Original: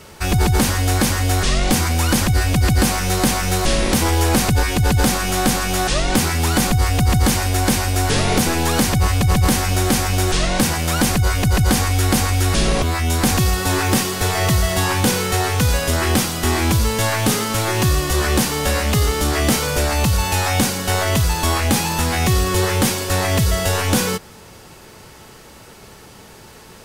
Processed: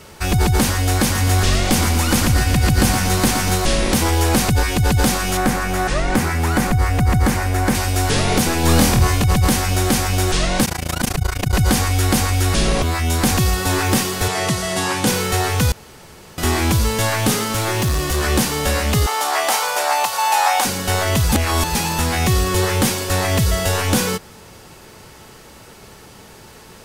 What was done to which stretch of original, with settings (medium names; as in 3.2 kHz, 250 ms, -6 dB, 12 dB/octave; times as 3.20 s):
1.03–3.56 s: feedback delay 118 ms, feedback 55%, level -7.5 dB
5.37–7.75 s: resonant high shelf 2.5 kHz -6 dB, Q 1.5
8.61–9.24 s: flutter echo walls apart 4.2 m, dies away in 0.36 s
10.65–11.53 s: AM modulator 28 Hz, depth 95%
14.28–15.07 s: Chebyshev band-pass 170–9600 Hz
15.72–16.38 s: room tone
17.48–18.23 s: hard clipper -15 dBFS
19.06–20.65 s: resonant high-pass 810 Hz, resonance Q 2.9
21.32–21.75 s: reverse